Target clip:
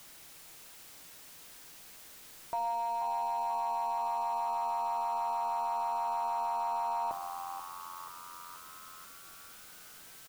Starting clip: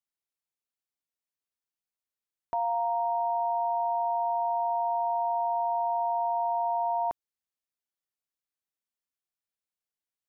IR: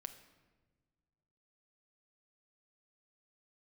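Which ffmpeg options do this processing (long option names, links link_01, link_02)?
-filter_complex "[0:a]aeval=exprs='val(0)+0.5*0.0112*sgn(val(0))':channel_layout=same,asplit=8[link_01][link_02][link_03][link_04][link_05][link_06][link_07][link_08];[link_02]adelay=483,afreqshift=88,volume=-11dB[link_09];[link_03]adelay=966,afreqshift=176,volume=-15.4dB[link_10];[link_04]adelay=1449,afreqshift=264,volume=-19.9dB[link_11];[link_05]adelay=1932,afreqshift=352,volume=-24.3dB[link_12];[link_06]adelay=2415,afreqshift=440,volume=-28.7dB[link_13];[link_07]adelay=2898,afreqshift=528,volume=-33.2dB[link_14];[link_08]adelay=3381,afreqshift=616,volume=-37.6dB[link_15];[link_01][link_09][link_10][link_11][link_12][link_13][link_14][link_15]amix=inputs=8:normalize=0[link_16];[1:a]atrim=start_sample=2205[link_17];[link_16][link_17]afir=irnorm=-1:irlink=0"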